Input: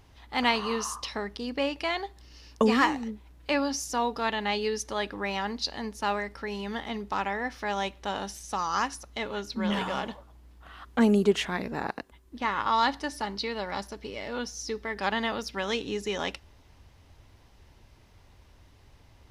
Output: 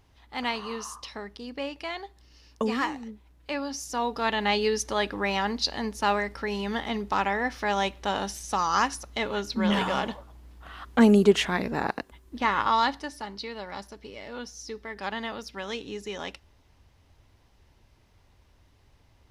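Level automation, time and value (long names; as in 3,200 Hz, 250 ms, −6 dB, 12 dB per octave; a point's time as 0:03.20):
0:03.61 −5 dB
0:04.45 +4 dB
0:12.59 +4 dB
0:13.16 −4.5 dB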